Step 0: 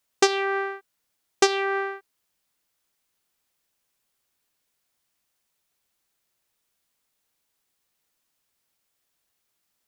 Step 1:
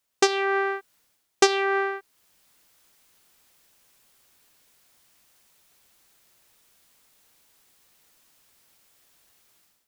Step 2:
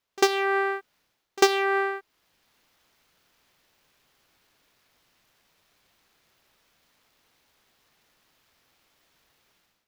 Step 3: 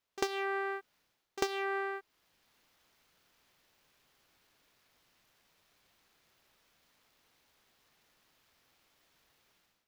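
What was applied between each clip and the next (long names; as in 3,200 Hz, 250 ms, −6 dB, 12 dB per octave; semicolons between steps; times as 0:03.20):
automatic gain control gain up to 15 dB; level −1 dB
running median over 5 samples; echo ahead of the sound 47 ms −23 dB
downward compressor 4 to 1, threshold −27 dBFS, peak gain reduction 12 dB; level −4 dB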